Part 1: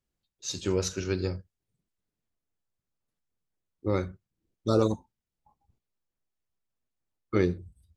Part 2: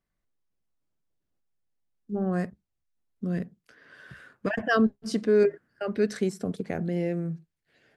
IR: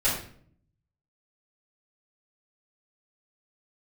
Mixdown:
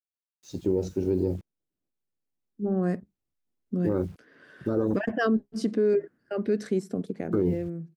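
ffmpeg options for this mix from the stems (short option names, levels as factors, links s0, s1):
-filter_complex "[0:a]afwtdn=0.0224,acrusher=bits=9:mix=0:aa=0.000001,volume=1.06[s0];[1:a]dynaudnorm=f=400:g=9:m=2.37,adelay=500,volume=0.282[s1];[s0][s1]amix=inputs=2:normalize=0,equalizer=f=300:t=o:w=1.8:g=9,alimiter=limit=0.15:level=0:latency=1:release=42"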